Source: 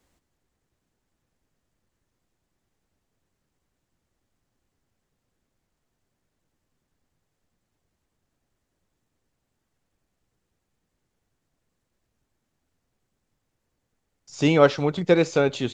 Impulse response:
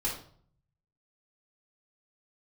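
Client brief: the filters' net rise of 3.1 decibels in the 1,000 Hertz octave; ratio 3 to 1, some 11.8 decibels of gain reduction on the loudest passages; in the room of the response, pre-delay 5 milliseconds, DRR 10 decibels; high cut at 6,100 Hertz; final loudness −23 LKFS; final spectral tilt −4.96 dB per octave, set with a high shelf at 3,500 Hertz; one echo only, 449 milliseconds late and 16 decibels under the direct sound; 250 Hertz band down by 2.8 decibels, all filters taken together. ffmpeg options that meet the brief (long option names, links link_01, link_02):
-filter_complex "[0:a]lowpass=6100,equalizer=frequency=250:width_type=o:gain=-4.5,equalizer=frequency=1000:width_type=o:gain=4,highshelf=frequency=3500:gain=6,acompressor=threshold=-27dB:ratio=3,aecho=1:1:449:0.158,asplit=2[link_01][link_02];[1:a]atrim=start_sample=2205,adelay=5[link_03];[link_02][link_03]afir=irnorm=-1:irlink=0,volume=-15dB[link_04];[link_01][link_04]amix=inputs=2:normalize=0,volume=6dB"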